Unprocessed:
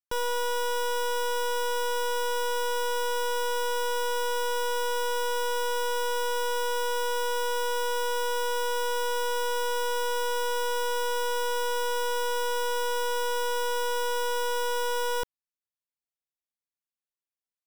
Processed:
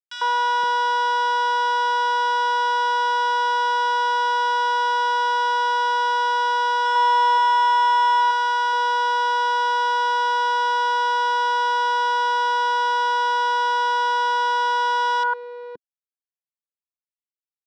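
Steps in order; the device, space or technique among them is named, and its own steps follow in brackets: bass shelf 130 Hz -8 dB; 6.85–8.21 s: comb 3.2 ms, depth 65%; treble shelf 4.1 kHz +3 dB; three bands offset in time highs, mids, lows 100/520 ms, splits 500/1900 Hz; blown loudspeaker (crossover distortion -50.5 dBFS; cabinet simulation 220–4600 Hz, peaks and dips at 260 Hz -4 dB, 370 Hz -4 dB, 590 Hz -6 dB, 1 kHz +8 dB, 1.5 kHz +10 dB, 2.4 kHz -4 dB); trim +7 dB

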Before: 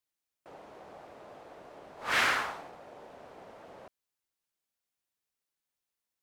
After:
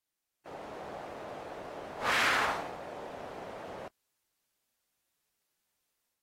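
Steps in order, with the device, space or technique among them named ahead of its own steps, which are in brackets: low-bitrate web radio (level rider gain up to 6 dB; peak limiter -21 dBFS, peak gain reduction 11.5 dB; trim +1 dB; AAC 48 kbps 44.1 kHz)

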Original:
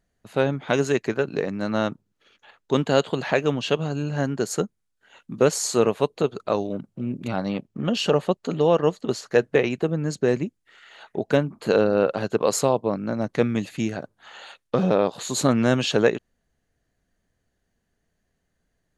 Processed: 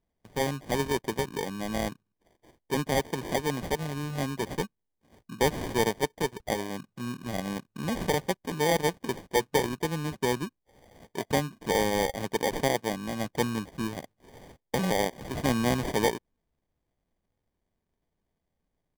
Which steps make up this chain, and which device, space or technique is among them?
crushed at another speed (playback speed 0.8×; sample-and-hold 41×; playback speed 1.25×); trim -6.5 dB

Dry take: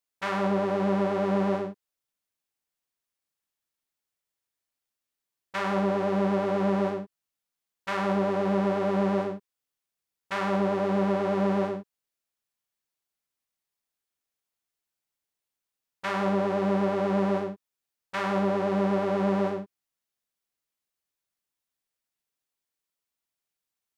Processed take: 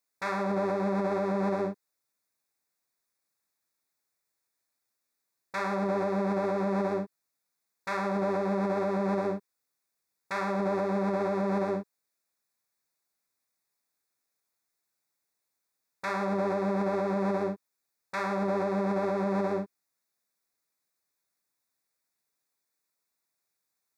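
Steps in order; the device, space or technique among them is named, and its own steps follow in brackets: PA system with an anti-feedback notch (high-pass 130 Hz 6 dB/octave; Butterworth band-stop 3 kHz, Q 3; peak limiter -24.5 dBFS, peak gain reduction 10 dB); trim +4.5 dB

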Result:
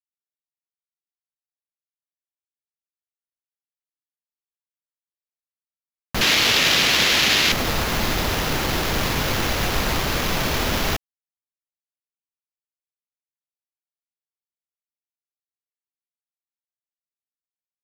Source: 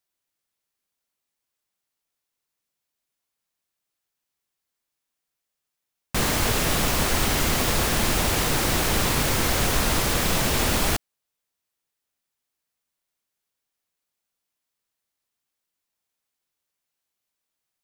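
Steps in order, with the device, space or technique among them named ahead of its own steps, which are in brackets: early 8-bit sampler (sample-rate reducer 8.7 kHz, jitter 0%; bit crusher 8-bit); 6.21–7.52 s: frequency weighting D

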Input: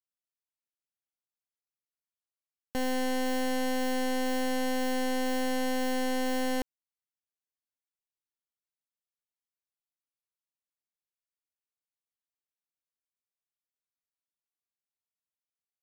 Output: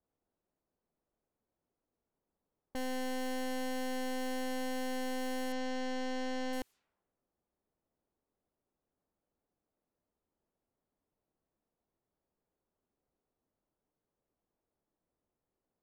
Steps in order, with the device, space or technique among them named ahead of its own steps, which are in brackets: 5.52–6.53 s: low-pass 6.6 kHz 24 dB/octave; cassette deck with a dynamic noise filter (white noise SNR 32 dB; level-controlled noise filter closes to 520 Hz, open at -33.5 dBFS); peaking EQ 120 Hz -3.5 dB; trim -7 dB

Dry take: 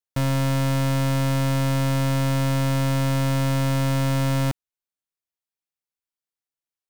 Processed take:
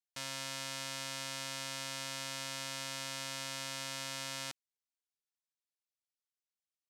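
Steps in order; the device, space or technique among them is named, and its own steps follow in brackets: piezo pickup straight into a mixer (low-pass 6 kHz 12 dB/octave; differentiator); trim +1 dB

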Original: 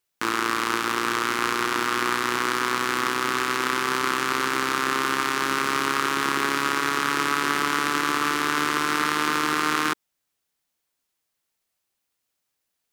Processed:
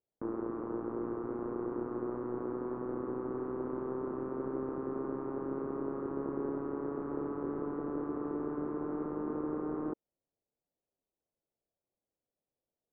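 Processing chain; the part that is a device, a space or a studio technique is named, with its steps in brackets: overdriven synthesiser ladder filter (saturation -22 dBFS, distortion -6 dB; four-pole ladder low-pass 710 Hz, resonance 35%); trim +3.5 dB

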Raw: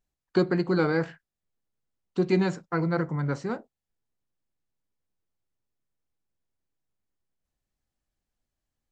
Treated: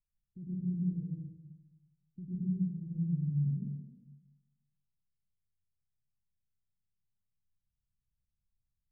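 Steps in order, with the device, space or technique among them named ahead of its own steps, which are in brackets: club heard from the street (peak limiter -19.5 dBFS, peak gain reduction 8.5 dB; low-pass 160 Hz 24 dB/octave; reverberation RT60 0.95 s, pre-delay 98 ms, DRR -6.5 dB); trim -7.5 dB

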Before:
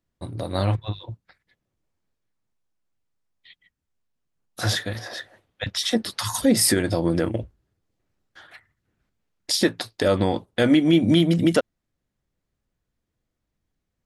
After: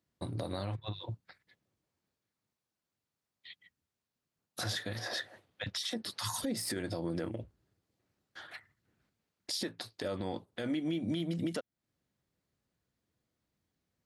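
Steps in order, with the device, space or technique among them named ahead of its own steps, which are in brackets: broadcast voice chain (high-pass 87 Hz; de-esser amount 35%; compression 4:1, threshold -32 dBFS, peak gain reduction 16 dB; peaking EQ 4.4 kHz +3 dB 0.42 oct; peak limiter -24 dBFS, peak gain reduction 9.5 dB); trim -1.5 dB

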